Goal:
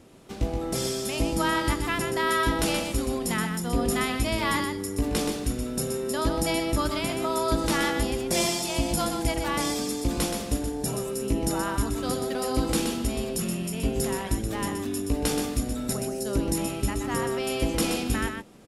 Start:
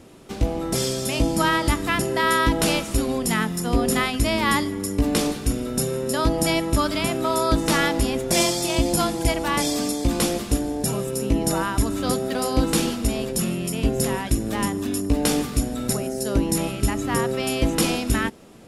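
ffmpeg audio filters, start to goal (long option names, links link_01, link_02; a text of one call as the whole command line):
ffmpeg -i in.wav -af "aecho=1:1:125:0.501,volume=-5.5dB" out.wav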